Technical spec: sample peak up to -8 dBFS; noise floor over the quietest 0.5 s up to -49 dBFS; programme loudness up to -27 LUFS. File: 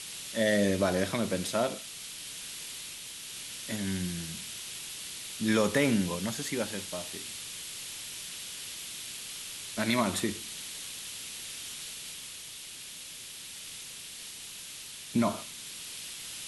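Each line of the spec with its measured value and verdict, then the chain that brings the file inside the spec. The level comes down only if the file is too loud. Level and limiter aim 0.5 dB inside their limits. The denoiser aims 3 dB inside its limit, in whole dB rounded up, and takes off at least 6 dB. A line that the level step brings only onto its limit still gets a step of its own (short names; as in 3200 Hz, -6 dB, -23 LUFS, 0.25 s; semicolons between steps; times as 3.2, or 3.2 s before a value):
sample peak -13.5 dBFS: OK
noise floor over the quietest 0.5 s -44 dBFS: fail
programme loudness -33.5 LUFS: OK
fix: denoiser 8 dB, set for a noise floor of -44 dBFS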